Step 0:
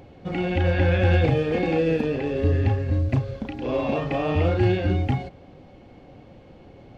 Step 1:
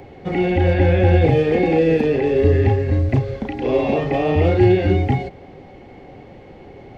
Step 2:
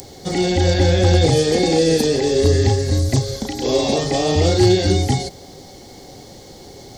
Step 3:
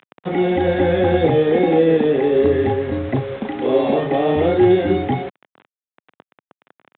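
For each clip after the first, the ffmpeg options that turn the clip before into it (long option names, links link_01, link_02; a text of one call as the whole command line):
ffmpeg -i in.wav -filter_complex "[0:a]equalizer=frequency=400:width_type=o:width=0.33:gain=8,equalizer=frequency=800:width_type=o:width=0.33:gain=6,equalizer=frequency=2000:width_type=o:width=0.33:gain=9,acrossover=split=200|810|1900[link_01][link_02][link_03][link_04];[link_03]acompressor=threshold=-42dB:ratio=6[link_05];[link_04]alimiter=level_in=6.5dB:limit=-24dB:level=0:latency=1:release=24,volume=-6.5dB[link_06];[link_01][link_02][link_05][link_06]amix=inputs=4:normalize=0,volume=4.5dB" out.wav
ffmpeg -i in.wav -af "aexciter=amount=14.7:drive=8.5:freq=4100,volume=6dB,asoftclip=hard,volume=-6dB" out.wav
ffmpeg -i in.wav -filter_complex "[0:a]acrusher=bits=4:mix=0:aa=0.000001,aresample=8000,aresample=44100,acrossover=split=150 2600:gain=0.126 1 0.112[link_01][link_02][link_03];[link_01][link_02][link_03]amix=inputs=3:normalize=0,volume=2dB" out.wav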